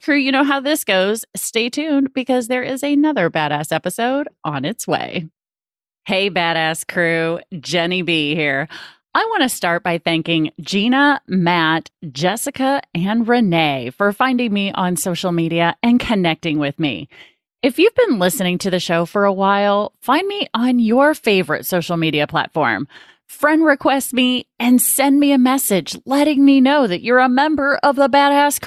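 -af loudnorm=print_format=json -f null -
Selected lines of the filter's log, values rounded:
"input_i" : "-16.2",
"input_tp" : "-2.7",
"input_lra" : "4.8",
"input_thresh" : "-26.4",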